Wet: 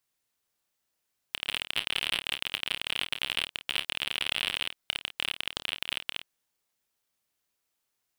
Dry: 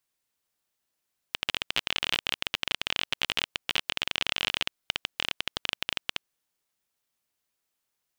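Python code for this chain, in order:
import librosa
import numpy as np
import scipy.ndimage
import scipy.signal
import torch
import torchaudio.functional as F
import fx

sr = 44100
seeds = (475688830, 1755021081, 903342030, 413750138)

y = np.clip(x, -10.0 ** (-13.5 / 20.0), 10.0 ** (-13.5 / 20.0))
y = fx.room_early_taps(y, sr, ms=(29, 52), db=(-9.0, -14.0))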